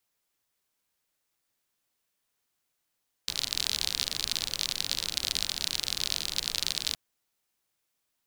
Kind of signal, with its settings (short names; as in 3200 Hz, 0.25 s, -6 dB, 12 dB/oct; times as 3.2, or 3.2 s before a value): rain from filtered ticks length 3.67 s, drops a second 50, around 4100 Hz, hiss -13 dB